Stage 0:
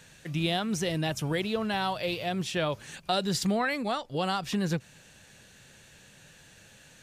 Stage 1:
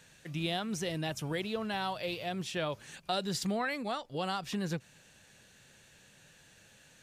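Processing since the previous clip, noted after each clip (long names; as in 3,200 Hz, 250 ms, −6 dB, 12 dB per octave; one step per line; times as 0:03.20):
low-shelf EQ 150 Hz −3 dB
level −5 dB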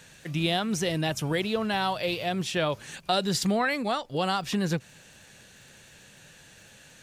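surface crackle 19 per second −51 dBFS
level +7.5 dB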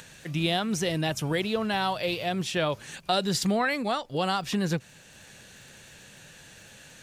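upward compression, threshold −44 dBFS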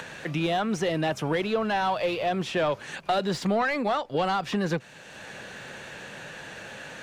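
mid-hump overdrive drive 17 dB, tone 1,000 Hz, clips at −11.5 dBFS
multiband upward and downward compressor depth 40%
level −1 dB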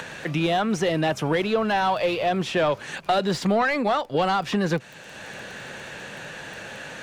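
surface crackle 10 per second −37 dBFS
level +3.5 dB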